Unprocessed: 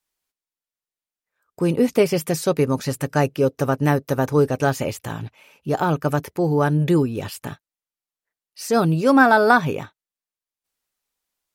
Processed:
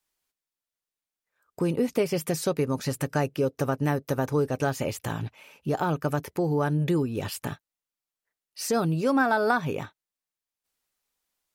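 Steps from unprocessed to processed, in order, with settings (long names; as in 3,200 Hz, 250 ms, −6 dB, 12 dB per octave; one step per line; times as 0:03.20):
downward compressor 2 to 1, threshold −27 dBFS, peak gain reduction 10 dB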